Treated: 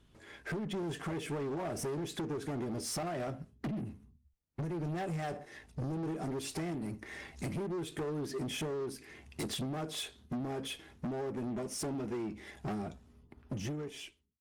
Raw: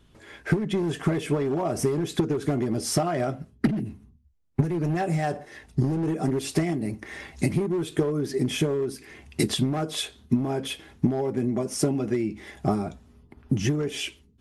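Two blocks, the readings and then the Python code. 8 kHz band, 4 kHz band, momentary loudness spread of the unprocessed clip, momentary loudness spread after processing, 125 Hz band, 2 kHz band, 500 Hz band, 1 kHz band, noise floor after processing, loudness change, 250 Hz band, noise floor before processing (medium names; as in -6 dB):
-9.0 dB, -9.5 dB, 7 LU, 8 LU, -13.0 dB, -9.5 dB, -11.5 dB, -9.5 dB, -66 dBFS, -11.5 dB, -12.5 dB, -58 dBFS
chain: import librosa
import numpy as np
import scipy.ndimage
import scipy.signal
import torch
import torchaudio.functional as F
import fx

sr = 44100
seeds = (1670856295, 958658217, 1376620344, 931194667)

y = fx.fade_out_tail(x, sr, length_s=1.05)
y = 10.0 ** (-26.5 / 20.0) * np.tanh(y / 10.0 ** (-26.5 / 20.0))
y = fx.cheby_harmonics(y, sr, harmonics=(8,), levels_db=(-28,), full_scale_db=-26.5)
y = y * 10.0 ** (-6.5 / 20.0)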